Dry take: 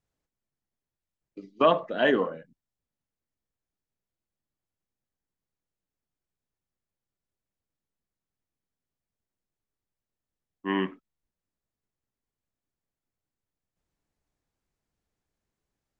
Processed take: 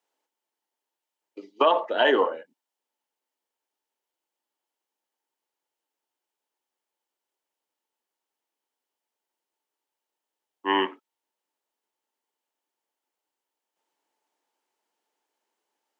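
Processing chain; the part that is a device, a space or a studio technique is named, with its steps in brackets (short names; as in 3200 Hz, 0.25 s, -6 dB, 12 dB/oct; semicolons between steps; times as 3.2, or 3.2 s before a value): laptop speaker (HPF 330 Hz 24 dB/oct; bell 890 Hz +12 dB 0.21 oct; bell 3000 Hz +5.5 dB 0.21 oct; limiter -14.5 dBFS, peak gain reduction 8 dB); gain +5 dB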